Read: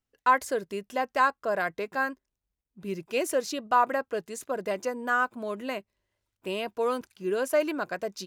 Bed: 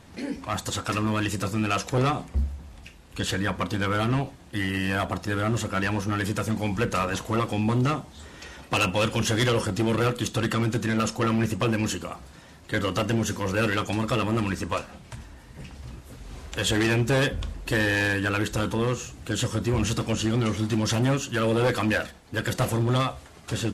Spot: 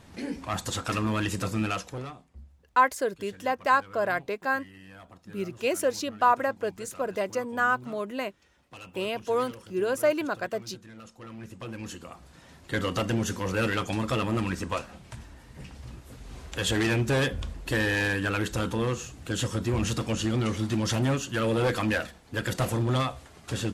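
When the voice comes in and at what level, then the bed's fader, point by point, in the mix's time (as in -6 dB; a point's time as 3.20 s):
2.50 s, +1.0 dB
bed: 1.64 s -2 dB
2.27 s -22.5 dB
11.10 s -22.5 dB
12.54 s -2.5 dB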